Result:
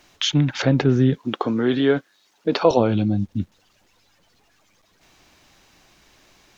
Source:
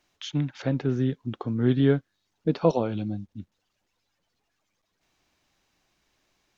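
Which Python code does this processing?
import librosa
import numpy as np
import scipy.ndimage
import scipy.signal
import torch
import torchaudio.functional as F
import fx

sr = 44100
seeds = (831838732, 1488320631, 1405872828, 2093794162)

p1 = fx.bessel_highpass(x, sr, hz=430.0, order=2, at=(1.18, 2.71))
p2 = fx.over_compress(p1, sr, threshold_db=-37.0, ratio=-1.0)
p3 = p1 + (p2 * 10.0 ** (-3.0 / 20.0))
y = p3 * 10.0 ** (7.5 / 20.0)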